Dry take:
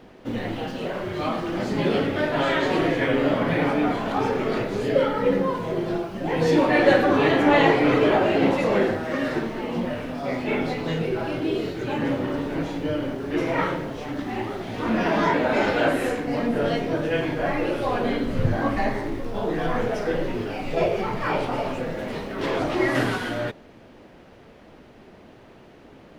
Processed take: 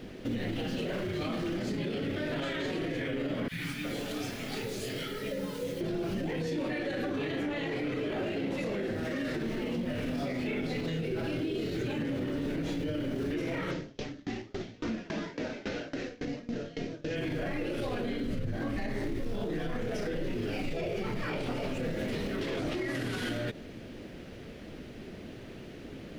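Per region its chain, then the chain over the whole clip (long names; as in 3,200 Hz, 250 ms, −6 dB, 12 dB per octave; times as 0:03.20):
0:03.48–0:05.81: first-order pre-emphasis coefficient 0.8 + three-band delay without the direct sound highs, lows, mids 30/360 ms, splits 280/1,000 Hz
0:13.71–0:17.16: variable-slope delta modulation 32 kbit/s + tremolo with a ramp in dB decaying 3.6 Hz, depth 33 dB
whole clip: parametric band 930 Hz −12.5 dB 1.3 octaves; downward compressor, threshold −30 dBFS; brickwall limiter −31.5 dBFS; level +6 dB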